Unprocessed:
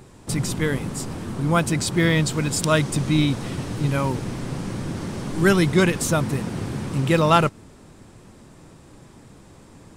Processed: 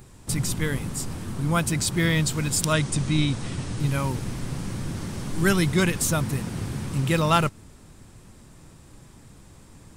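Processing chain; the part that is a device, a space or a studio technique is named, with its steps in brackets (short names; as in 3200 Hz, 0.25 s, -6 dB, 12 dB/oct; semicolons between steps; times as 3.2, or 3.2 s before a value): 2.73–3.8 steep low-pass 9900 Hz 48 dB/oct; smiley-face EQ (low shelf 83 Hz +6.5 dB; bell 450 Hz -4.5 dB 2.5 oct; high shelf 9500 Hz +8.5 dB); gain -2 dB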